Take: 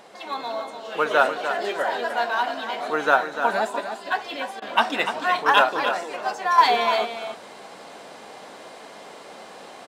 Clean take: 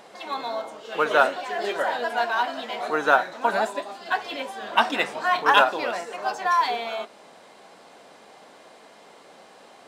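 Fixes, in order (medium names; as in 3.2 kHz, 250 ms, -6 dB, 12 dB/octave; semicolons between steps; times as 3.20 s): interpolate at 4.60 s, 18 ms; inverse comb 296 ms -9 dB; gain correction -7 dB, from 6.58 s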